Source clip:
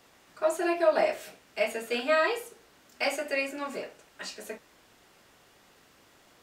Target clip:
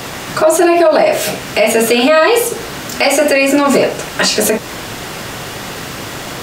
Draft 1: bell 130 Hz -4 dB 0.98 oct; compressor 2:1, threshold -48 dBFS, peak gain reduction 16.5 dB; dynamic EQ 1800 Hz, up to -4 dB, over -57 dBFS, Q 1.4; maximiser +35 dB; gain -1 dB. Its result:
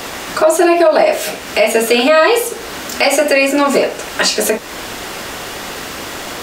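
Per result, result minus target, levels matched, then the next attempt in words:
125 Hz band -7.5 dB; compressor: peak gain reduction +3.5 dB
bell 130 Hz +7.5 dB 0.98 oct; compressor 2:1, threshold -48 dBFS, peak gain reduction 16.5 dB; dynamic EQ 1800 Hz, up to -4 dB, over -57 dBFS, Q 1.4; maximiser +35 dB; gain -1 dB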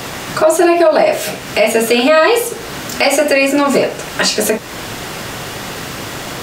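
compressor: peak gain reduction +3.5 dB
bell 130 Hz +7.5 dB 0.98 oct; compressor 2:1, threshold -41 dBFS, peak gain reduction 13 dB; dynamic EQ 1800 Hz, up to -4 dB, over -57 dBFS, Q 1.4; maximiser +35 dB; gain -1 dB

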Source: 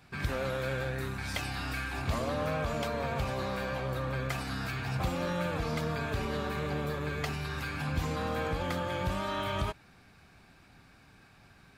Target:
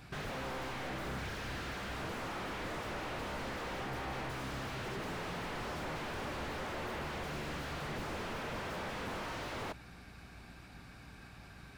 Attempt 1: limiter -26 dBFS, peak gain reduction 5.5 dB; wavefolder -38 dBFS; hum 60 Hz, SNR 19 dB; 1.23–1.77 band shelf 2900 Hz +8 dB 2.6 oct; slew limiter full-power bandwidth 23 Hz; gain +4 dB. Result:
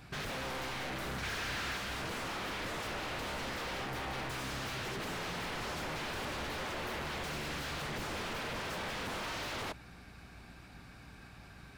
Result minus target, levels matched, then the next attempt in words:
slew limiter: distortion -6 dB
limiter -26 dBFS, peak gain reduction 5.5 dB; wavefolder -38 dBFS; hum 60 Hz, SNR 19 dB; 1.23–1.77 band shelf 2900 Hz +8 dB 2.6 oct; slew limiter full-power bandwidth 10 Hz; gain +4 dB

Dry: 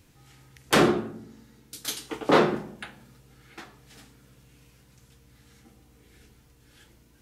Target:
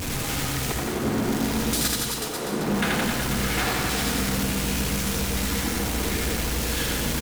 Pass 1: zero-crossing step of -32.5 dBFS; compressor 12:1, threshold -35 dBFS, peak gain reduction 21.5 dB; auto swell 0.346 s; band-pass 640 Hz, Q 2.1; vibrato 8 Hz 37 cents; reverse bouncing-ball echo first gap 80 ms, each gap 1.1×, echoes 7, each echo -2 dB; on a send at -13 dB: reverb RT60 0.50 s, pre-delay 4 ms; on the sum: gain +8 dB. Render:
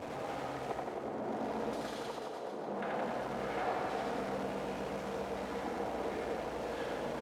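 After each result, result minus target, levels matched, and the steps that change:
500 Hz band +8.0 dB; compressor: peak gain reduction +7 dB
remove: band-pass 640 Hz, Q 2.1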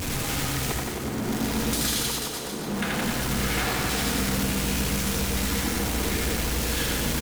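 compressor: peak gain reduction +7 dB
change: compressor 12:1, threshold -27.5 dBFS, peak gain reduction 14.5 dB

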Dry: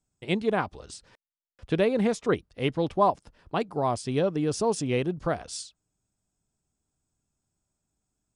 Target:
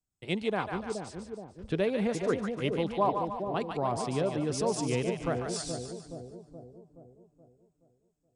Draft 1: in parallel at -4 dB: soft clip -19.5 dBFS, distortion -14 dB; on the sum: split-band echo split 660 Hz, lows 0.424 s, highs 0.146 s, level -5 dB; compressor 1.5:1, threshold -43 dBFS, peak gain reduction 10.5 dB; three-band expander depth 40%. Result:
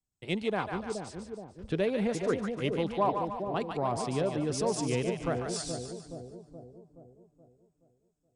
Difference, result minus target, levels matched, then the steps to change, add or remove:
soft clip: distortion +9 dB
change: soft clip -13 dBFS, distortion -23 dB

